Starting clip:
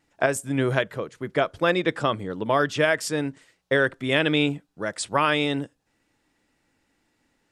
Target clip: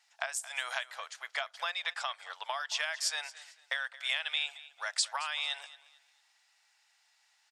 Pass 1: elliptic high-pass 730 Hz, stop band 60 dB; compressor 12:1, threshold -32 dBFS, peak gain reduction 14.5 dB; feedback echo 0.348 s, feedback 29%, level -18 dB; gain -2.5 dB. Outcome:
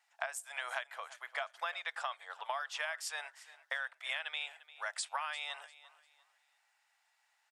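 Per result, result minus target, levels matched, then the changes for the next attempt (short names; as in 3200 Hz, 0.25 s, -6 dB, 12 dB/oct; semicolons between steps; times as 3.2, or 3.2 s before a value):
echo 0.125 s late; 4000 Hz band -4.0 dB
change: feedback echo 0.223 s, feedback 29%, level -18 dB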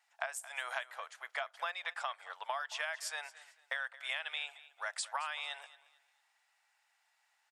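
4000 Hz band -4.0 dB
add after compressor: bell 5000 Hz +11.5 dB 1.8 oct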